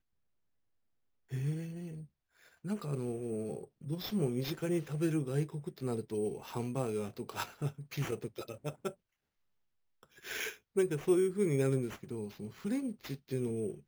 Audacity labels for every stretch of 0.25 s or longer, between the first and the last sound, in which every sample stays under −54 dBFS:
2.060000	2.410000	silence
8.940000	10.030000	silence